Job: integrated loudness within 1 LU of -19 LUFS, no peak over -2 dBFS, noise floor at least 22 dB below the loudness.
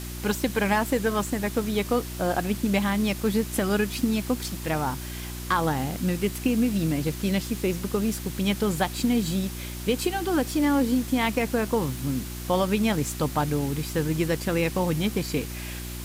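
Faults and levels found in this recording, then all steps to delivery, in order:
hum 60 Hz; highest harmonic 360 Hz; hum level -34 dBFS; noise floor -35 dBFS; noise floor target -48 dBFS; loudness -26.0 LUFS; peak level -10.0 dBFS; loudness target -19.0 LUFS
-> de-hum 60 Hz, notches 6; noise print and reduce 13 dB; trim +7 dB

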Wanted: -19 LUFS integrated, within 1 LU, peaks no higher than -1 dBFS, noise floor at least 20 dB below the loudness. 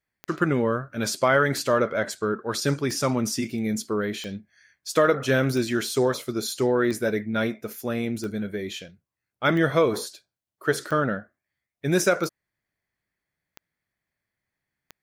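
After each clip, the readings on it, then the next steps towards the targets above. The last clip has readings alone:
clicks found 12; loudness -25.0 LUFS; peak level -7.5 dBFS; loudness target -19.0 LUFS
-> de-click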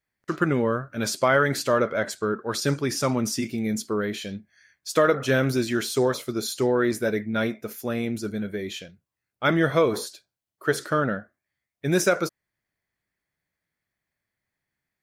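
clicks found 0; loudness -25.0 LUFS; peak level -7.5 dBFS; loudness target -19.0 LUFS
-> trim +6 dB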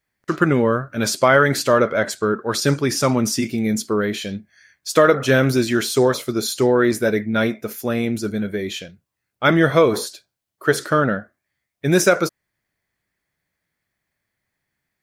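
loudness -19.0 LUFS; peak level -1.5 dBFS; noise floor -80 dBFS

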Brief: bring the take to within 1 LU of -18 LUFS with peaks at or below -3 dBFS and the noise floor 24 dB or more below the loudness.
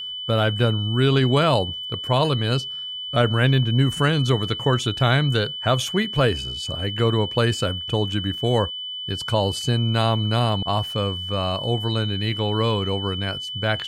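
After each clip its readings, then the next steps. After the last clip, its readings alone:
tick rate 39 per s; steady tone 3 kHz; tone level -29 dBFS; loudness -22.0 LUFS; peak level -5.0 dBFS; loudness target -18.0 LUFS
-> de-click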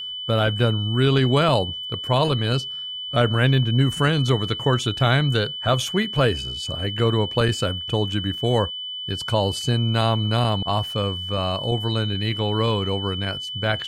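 tick rate 0.14 per s; steady tone 3 kHz; tone level -29 dBFS
-> band-stop 3 kHz, Q 30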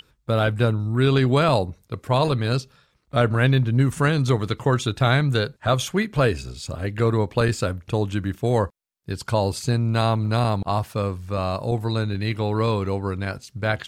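steady tone not found; loudness -22.5 LUFS; peak level -6.0 dBFS; loudness target -18.0 LUFS
-> trim +4.5 dB; peak limiter -3 dBFS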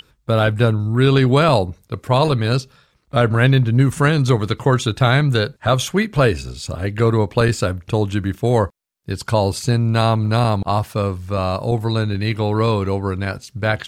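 loudness -18.0 LUFS; peak level -3.0 dBFS; noise floor -60 dBFS

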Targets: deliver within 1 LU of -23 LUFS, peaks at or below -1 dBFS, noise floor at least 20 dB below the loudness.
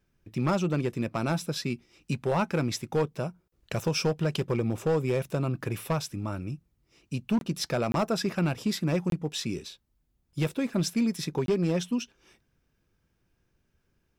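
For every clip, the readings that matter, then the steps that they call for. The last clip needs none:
clipped samples 1.0%; clipping level -19.5 dBFS; dropouts 4; longest dropout 22 ms; loudness -29.5 LUFS; peak level -19.5 dBFS; loudness target -23.0 LUFS
-> clip repair -19.5 dBFS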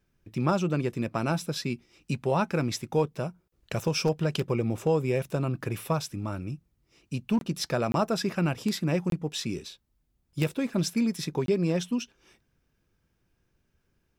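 clipped samples 0.0%; dropouts 4; longest dropout 22 ms
-> interpolate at 7.39/7.92/9.10/11.46 s, 22 ms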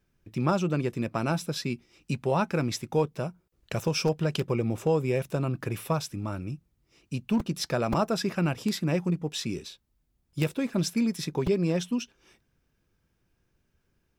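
dropouts 0; loudness -29.0 LUFS; peak level -11.0 dBFS; loudness target -23.0 LUFS
-> trim +6 dB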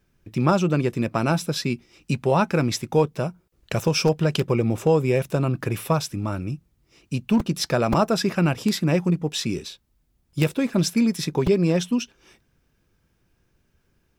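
loudness -23.0 LUFS; peak level -5.0 dBFS; noise floor -68 dBFS

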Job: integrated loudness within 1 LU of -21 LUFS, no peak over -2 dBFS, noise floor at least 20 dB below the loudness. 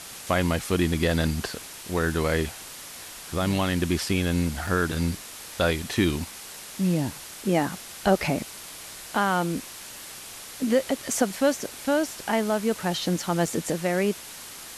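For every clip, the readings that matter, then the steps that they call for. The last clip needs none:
dropouts 3; longest dropout 3.7 ms; noise floor -41 dBFS; noise floor target -46 dBFS; loudness -26.0 LUFS; peak level -7.5 dBFS; loudness target -21.0 LUFS
-> interpolate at 4.09/4.67/13.46 s, 3.7 ms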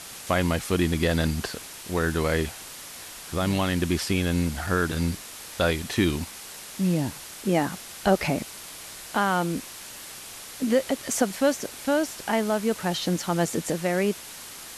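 dropouts 0; noise floor -41 dBFS; noise floor target -46 dBFS
-> noise reduction 6 dB, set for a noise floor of -41 dBFS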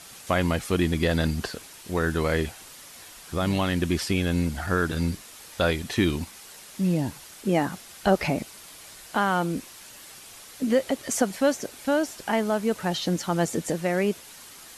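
noise floor -46 dBFS; noise floor target -47 dBFS
-> noise reduction 6 dB, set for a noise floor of -46 dBFS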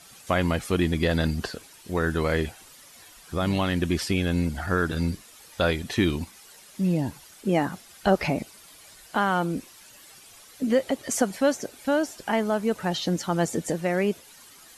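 noise floor -51 dBFS; loudness -26.5 LUFS; peak level -8.0 dBFS; loudness target -21.0 LUFS
-> trim +5.5 dB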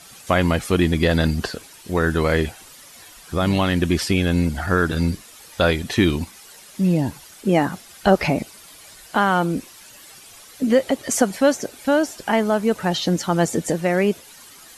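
loudness -21.0 LUFS; peak level -2.5 dBFS; noise floor -45 dBFS

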